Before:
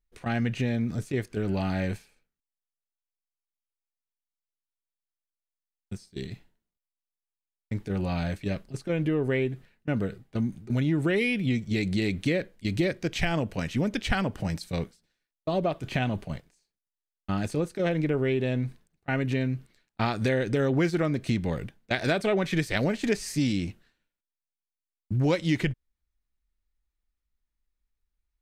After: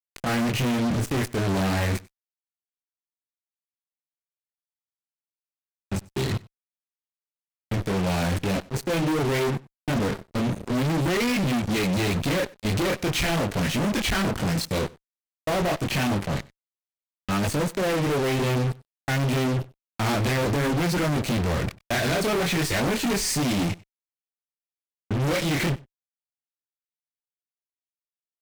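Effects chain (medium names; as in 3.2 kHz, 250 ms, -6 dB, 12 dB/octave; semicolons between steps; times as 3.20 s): single-diode clipper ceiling -17 dBFS; chorus voices 4, 0.56 Hz, delay 25 ms, depth 4.7 ms; fuzz box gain 47 dB, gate -46 dBFS; on a send: delay 95 ms -23 dB; on the sum: trim -9 dB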